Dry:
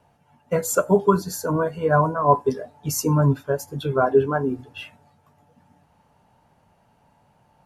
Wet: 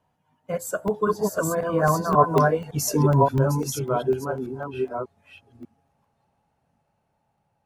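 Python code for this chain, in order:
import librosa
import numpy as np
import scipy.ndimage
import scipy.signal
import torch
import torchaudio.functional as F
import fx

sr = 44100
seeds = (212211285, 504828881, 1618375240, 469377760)

y = fx.reverse_delay(x, sr, ms=564, wet_db=-1.5)
y = fx.doppler_pass(y, sr, speed_mps=19, closest_m=16.0, pass_at_s=2.6)
y = fx.buffer_crackle(y, sr, first_s=0.88, period_s=0.25, block=64, kind='zero')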